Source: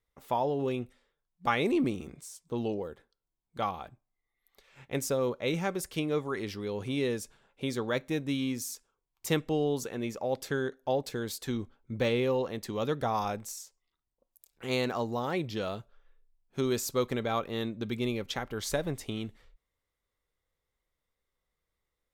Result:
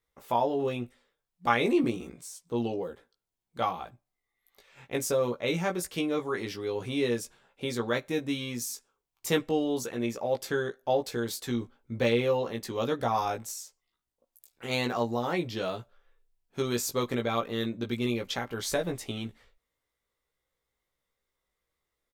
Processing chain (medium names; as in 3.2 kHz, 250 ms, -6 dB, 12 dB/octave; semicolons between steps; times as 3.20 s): bass shelf 130 Hz -6.5 dB; doubling 17 ms -3.5 dB; trim +1 dB